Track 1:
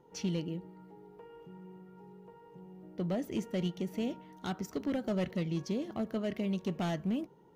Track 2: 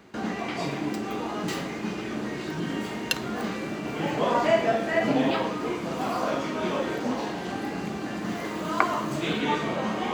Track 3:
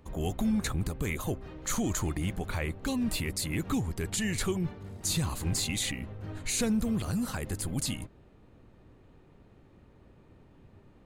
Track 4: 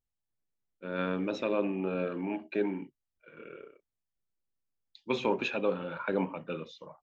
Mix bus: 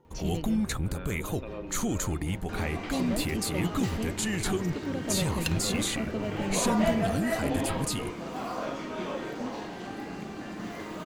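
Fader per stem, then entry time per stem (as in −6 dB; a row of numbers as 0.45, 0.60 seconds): −0.5, −6.5, +0.5, −11.0 decibels; 0.00, 2.35, 0.05, 0.00 seconds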